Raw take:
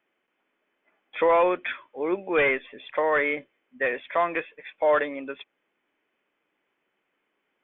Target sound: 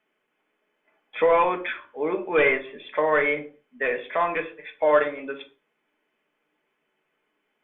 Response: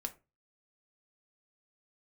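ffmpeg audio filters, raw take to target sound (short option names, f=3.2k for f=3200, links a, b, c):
-filter_complex "[1:a]atrim=start_sample=2205,afade=t=out:st=0.21:d=0.01,atrim=end_sample=9702,asetrate=27783,aresample=44100[a];[0:a][a]afir=irnorm=-1:irlink=0"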